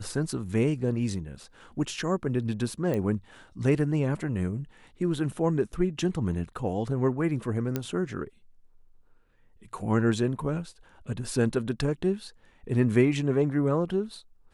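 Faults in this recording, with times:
0:02.94: click −18 dBFS
0:07.76: click −14 dBFS

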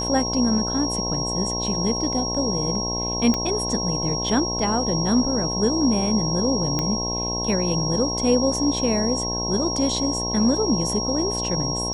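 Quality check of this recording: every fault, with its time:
mains buzz 60 Hz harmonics 18 −29 dBFS
whistle 5,600 Hz −26 dBFS
0:03.34: click −10 dBFS
0:06.79: click −10 dBFS

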